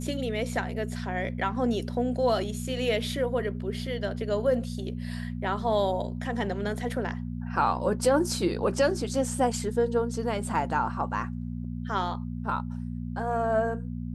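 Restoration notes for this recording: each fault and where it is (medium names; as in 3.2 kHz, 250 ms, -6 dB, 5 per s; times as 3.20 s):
hum 60 Hz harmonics 4 -34 dBFS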